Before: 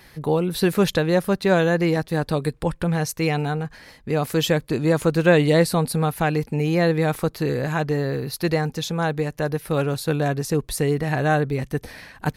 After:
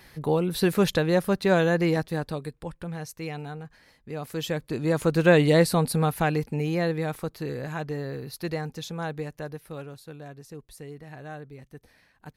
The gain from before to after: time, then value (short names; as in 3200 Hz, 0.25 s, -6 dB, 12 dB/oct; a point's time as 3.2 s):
1.99 s -3 dB
2.54 s -12.5 dB
4.15 s -12.5 dB
5.23 s -2 dB
6.13 s -2 dB
7.2 s -9 dB
9.25 s -9 dB
10.08 s -20 dB